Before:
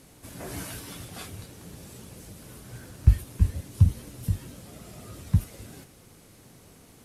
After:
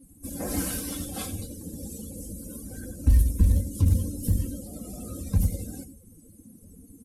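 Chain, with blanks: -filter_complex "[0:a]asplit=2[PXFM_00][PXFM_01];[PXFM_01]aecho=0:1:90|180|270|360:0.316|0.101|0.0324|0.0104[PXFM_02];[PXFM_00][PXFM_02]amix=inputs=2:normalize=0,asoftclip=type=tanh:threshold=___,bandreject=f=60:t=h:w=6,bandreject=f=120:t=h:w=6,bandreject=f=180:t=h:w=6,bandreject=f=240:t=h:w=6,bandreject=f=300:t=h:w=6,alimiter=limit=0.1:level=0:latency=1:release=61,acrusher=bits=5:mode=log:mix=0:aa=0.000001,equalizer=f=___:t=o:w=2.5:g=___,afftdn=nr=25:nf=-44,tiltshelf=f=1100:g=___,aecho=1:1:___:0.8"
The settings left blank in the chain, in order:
0.376, 11000, 15, 8, 3.8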